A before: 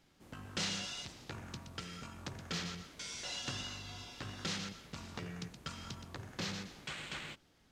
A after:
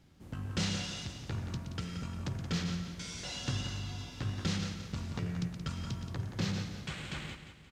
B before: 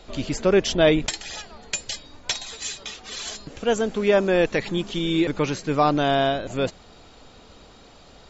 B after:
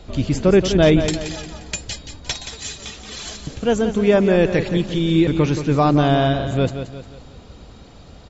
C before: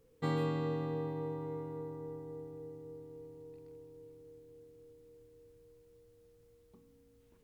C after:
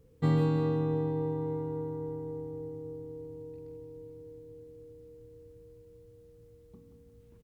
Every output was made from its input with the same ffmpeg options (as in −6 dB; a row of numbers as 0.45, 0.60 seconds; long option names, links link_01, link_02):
-filter_complex "[0:a]equalizer=frequency=83:width=0.38:gain=13,asplit=2[link_01][link_02];[link_02]aecho=0:1:176|352|528|704|880:0.335|0.147|0.0648|0.0285|0.0126[link_03];[link_01][link_03]amix=inputs=2:normalize=0"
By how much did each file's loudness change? +4.5, +5.0, +7.0 LU